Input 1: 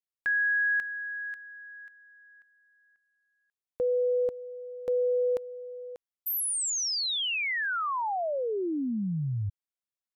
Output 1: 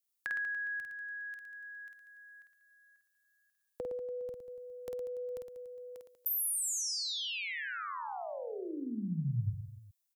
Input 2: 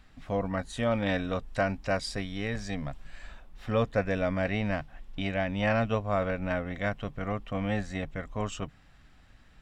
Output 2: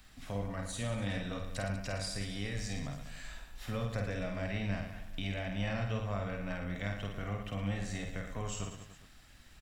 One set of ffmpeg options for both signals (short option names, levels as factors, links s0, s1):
-filter_complex "[0:a]crystalizer=i=3.5:c=0,acrossover=split=170[s0][s1];[s1]acompressor=threshold=0.00447:ratio=2:attack=39:release=143:knee=2.83:detection=peak[s2];[s0][s2]amix=inputs=2:normalize=0,aecho=1:1:50|112.5|190.6|288.3|410.4:0.631|0.398|0.251|0.158|0.1,volume=0.631"